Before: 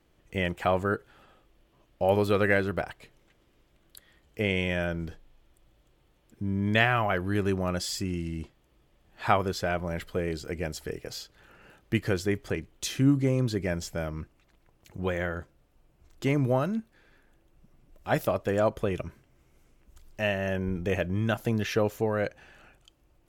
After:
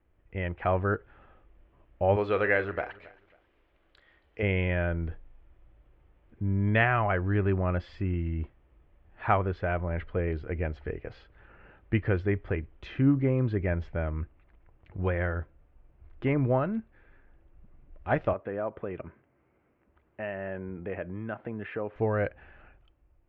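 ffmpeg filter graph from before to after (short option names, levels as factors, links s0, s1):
-filter_complex "[0:a]asettb=1/sr,asplit=3[s0][s1][s2];[s0]atrim=end=2.164[s3];[s1]atrim=start=2.16:end=4.43,asetpts=PTS-STARTPTS,afade=t=in:d=0.004:c=qsin,afade=t=out:st=2.266:d=0.004:c=qsin,bass=f=250:g=-11,treble=f=4000:g=15,asplit=2[s4][s5];[s5]adelay=43,volume=0.211[s6];[s4][s6]amix=inputs=2:normalize=0,atrim=end_sample=100107,aecho=1:1:273|546:0.0891|0.0241,atrim=end_sample=100107[s7];[s2]atrim=start=4.426[s8];[s3][s7]acrossfade=d=0.004:c1=hsin:c2=qsin[s9];[s9][s8]acrossfade=d=0.004:c1=qsin:c2=hsin,asettb=1/sr,asplit=3[s10][s11][s12];[s10]atrim=end=18.334[s13];[s11]atrim=start=18.33:end=21.96,asetpts=PTS-STARTPTS,afade=t=in:d=0.004:c=qsin,afade=t=out:st=3.626:d=0.004:c=qsin,acompressor=threshold=0.0224:ratio=2:attack=3.2:release=140:knee=1:detection=peak,highpass=180,lowpass=2400[s14];[s12]atrim=start=21.956[s15];[s13][s14]acrossfade=d=0.004:c1=hsin:c2=qsin[s16];[s16][s15]acrossfade=d=0.004:c1=qsin:c2=hsin,lowpass=f=2400:w=0.5412,lowpass=f=2400:w=1.3066,lowshelf=f=110:t=q:w=1.5:g=6,dynaudnorm=f=110:g=11:m=2,volume=0.501"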